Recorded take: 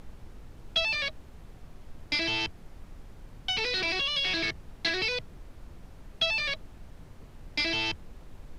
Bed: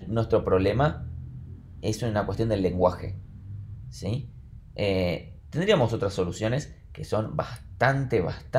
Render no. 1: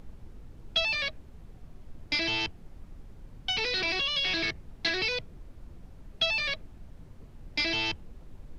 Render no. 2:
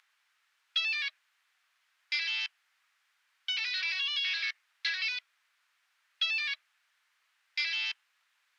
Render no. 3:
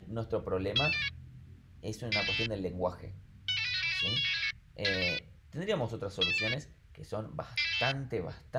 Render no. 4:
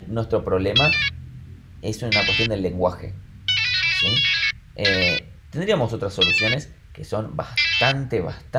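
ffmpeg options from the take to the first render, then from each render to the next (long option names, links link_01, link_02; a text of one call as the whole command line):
ffmpeg -i in.wav -af "afftdn=noise_reduction=6:noise_floor=-51" out.wav
ffmpeg -i in.wav -af "highpass=frequency=1500:width=0.5412,highpass=frequency=1500:width=1.3066,highshelf=frequency=4800:gain=-8.5" out.wav
ffmpeg -i in.wav -i bed.wav -filter_complex "[1:a]volume=-11dB[link_01];[0:a][link_01]amix=inputs=2:normalize=0" out.wav
ffmpeg -i in.wav -af "volume=12dB" out.wav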